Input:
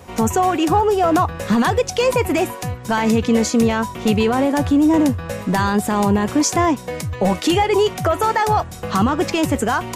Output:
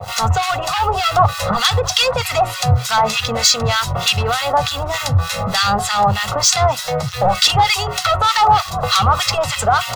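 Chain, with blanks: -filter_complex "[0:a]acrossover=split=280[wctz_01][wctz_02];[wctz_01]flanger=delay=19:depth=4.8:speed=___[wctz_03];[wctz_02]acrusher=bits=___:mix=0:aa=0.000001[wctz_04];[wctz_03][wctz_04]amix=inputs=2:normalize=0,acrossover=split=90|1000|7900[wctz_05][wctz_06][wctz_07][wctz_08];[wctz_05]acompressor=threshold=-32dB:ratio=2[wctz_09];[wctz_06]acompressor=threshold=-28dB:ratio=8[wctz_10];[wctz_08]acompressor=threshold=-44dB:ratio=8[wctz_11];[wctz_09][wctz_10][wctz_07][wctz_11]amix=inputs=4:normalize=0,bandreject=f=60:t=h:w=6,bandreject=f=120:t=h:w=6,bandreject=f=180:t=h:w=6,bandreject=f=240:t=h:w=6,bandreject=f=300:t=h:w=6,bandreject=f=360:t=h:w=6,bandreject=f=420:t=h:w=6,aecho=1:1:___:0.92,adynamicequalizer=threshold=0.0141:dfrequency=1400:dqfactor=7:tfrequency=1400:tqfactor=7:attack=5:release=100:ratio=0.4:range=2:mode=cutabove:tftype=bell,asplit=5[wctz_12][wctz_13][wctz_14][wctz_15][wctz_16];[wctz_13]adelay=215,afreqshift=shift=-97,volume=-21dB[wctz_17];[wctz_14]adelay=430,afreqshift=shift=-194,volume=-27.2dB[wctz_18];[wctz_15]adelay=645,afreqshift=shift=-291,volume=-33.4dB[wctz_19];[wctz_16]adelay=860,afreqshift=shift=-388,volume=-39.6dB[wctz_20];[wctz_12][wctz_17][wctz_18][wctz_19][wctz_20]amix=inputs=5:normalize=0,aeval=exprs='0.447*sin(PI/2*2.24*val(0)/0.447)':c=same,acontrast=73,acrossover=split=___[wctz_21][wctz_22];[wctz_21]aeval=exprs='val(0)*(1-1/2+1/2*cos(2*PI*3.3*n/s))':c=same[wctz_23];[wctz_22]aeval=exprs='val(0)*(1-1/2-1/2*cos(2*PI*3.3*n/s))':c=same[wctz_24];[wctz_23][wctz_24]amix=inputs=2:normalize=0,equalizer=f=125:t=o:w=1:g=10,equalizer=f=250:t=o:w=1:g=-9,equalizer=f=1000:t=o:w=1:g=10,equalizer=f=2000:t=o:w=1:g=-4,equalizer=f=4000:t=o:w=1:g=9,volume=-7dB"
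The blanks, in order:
1.6, 6, 1.5, 1300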